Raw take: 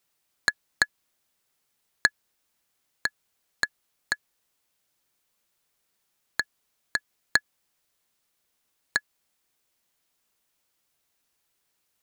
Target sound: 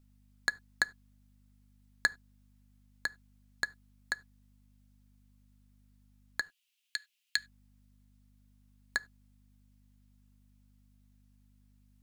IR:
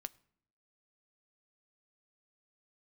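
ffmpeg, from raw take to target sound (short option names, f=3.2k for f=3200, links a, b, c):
-filter_complex "[0:a]aeval=exprs='val(0)+0.00178*(sin(2*PI*50*n/s)+sin(2*PI*2*50*n/s)/2+sin(2*PI*3*50*n/s)/3+sin(2*PI*4*50*n/s)/4+sin(2*PI*5*50*n/s)/5)':c=same,asettb=1/sr,asplit=3[a][b][c];[a]atrim=end=6.414[d];[b]atrim=start=6.41:end=7.37,asetpts=PTS-STARTPTS,afade=t=in:d=0.004:c=qsin,afade=t=out:st=0.956:d=0.004:c=qsin,highpass=f=2.8k:t=q:w=4.5[e];[c]atrim=start=7.366[f];[d][e]acrossfade=d=0.004:c1=hsin:c2=qsin[g];[g][f]acrossfade=d=0.004:c1=qsin:c2=hsin[h];[1:a]atrim=start_sample=2205,atrim=end_sample=6615,asetrate=61740,aresample=44100[i];[h][i]afir=irnorm=-1:irlink=0"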